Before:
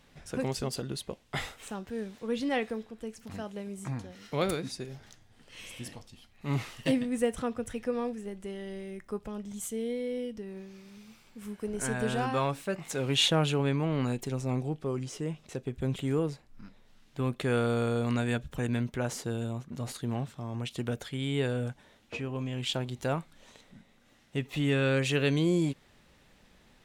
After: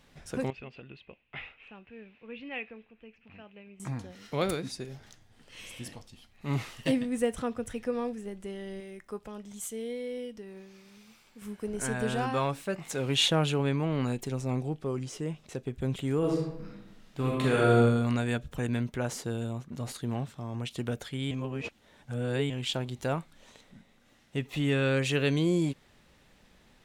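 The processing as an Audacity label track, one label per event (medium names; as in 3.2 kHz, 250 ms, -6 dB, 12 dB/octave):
0.500000	3.800000	four-pole ladder low-pass 2.7 kHz, resonance 80%
8.800000	11.420000	bass shelf 300 Hz -7.5 dB
16.180000	17.750000	reverb throw, RT60 0.96 s, DRR -3 dB
21.310000	22.500000	reverse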